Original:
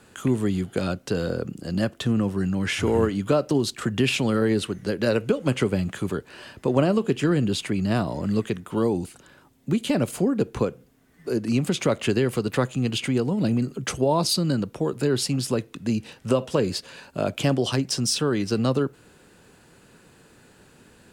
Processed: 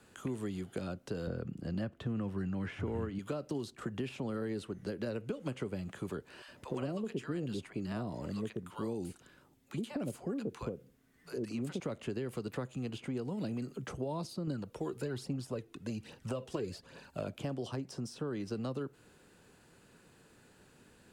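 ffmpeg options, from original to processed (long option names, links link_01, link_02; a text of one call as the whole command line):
ffmpeg -i in.wav -filter_complex "[0:a]asettb=1/sr,asplit=3[link_01][link_02][link_03];[link_01]atrim=end=1.274[link_04];[link_02]atrim=start=1.27:end=3.19,asetpts=PTS-STARTPTS,afade=type=in:duration=0.004:curve=qsin,afade=type=out:start_time=1.916:duration=0.004:curve=qsin,bass=frequency=250:gain=10,treble=frequency=4000:gain=-11[link_05];[link_03]atrim=start=3.186[link_06];[link_04][link_05]acrossfade=duration=0.004:curve1=hsin:curve2=qsin[link_07];[link_07][link_06]acrossfade=duration=0.004:curve1=qsin:curve2=hsin,asettb=1/sr,asplit=3[link_08][link_09][link_10];[link_08]atrim=end=6.424[link_11];[link_09]atrim=start=6.42:end=11.8,asetpts=PTS-STARTPTS,afade=type=in:duration=0.004:curve=qsin,afade=type=out:start_time=5.376:duration=0.004:curve=qsin,acrossover=split=760[link_12][link_13];[link_12]adelay=60[link_14];[link_14][link_13]amix=inputs=2:normalize=0,atrim=end_sample=237258[link_15];[link_10]atrim=start=11.796[link_16];[link_11][link_15]acrossfade=duration=0.004:curve1=hsin:curve2=qsin[link_17];[link_17][link_16]acrossfade=duration=0.004:curve1=qsin:curve2=hsin,asettb=1/sr,asplit=3[link_18][link_19][link_20];[link_18]atrim=end=14.474[link_21];[link_19]atrim=start=14.47:end=17.27,asetpts=PTS-STARTPTS,afade=type=in:duration=0.004:curve=qsin,afade=type=out:start_time=2.796:duration=0.004:curve=qsin,aphaser=in_gain=1:out_gain=1:delay=3:decay=0.5:speed=1.2:type=triangular[link_22];[link_20]atrim=start=17.266[link_23];[link_21][link_22]acrossfade=duration=0.004:curve1=hsin:curve2=qsin[link_24];[link_24][link_23]acrossfade=duration=0.004:curve1=qsin:curve2=hsin,acrossover=split=340|1300[link_25][link_26][link_27];[link_25]acompressor=threshold=-30dB:ratio=4[link_28];[link_26]acompressor=threshold=-32dB:ratio=4[link_29];[link_27]acompressor=threshold=-44dB:ratio=4[link_30];[link_28][link_29][link_30]amix=inputs=3:normalize=0,volume=-8.5dB" out.wav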